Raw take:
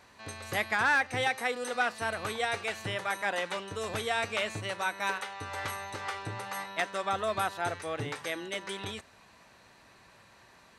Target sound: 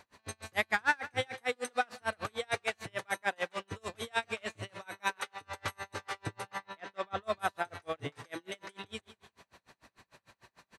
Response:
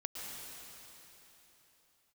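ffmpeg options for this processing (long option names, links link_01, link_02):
-filter_complex "[0:a]asettb=1/sr,asplit=3[link_01][link_02][link_03];[link_01]atrim=end=6.474[link_04];[link_02]atrim=start=6.47:end=7.22,asetpts=PTS-STARTPTS,afade=type=in:duration=0.004:curve=qsin,afade=type=out:start_time=0.746:duration=0.004:curve=qsin,lowpass=4600[link_05];[link_03]atrim=start=7.216[link_06];[link_04][link_05]acrossfade=duration=0.004:curve1=hsin:curve2=qsin[link_07];[link_07][link_06]acrossfade=duration=0.004:curve1=qsin:curve2=hsin,aecho=1:1:171|342|513|684:0.15|0.0643|0.0277|0.0119,aeval=exprs='val(0)*pow(10,-36*(0.5-0.5*cos(2*PI*6.7*n/s))/20)':channel_layout=same,volume=2.5dB"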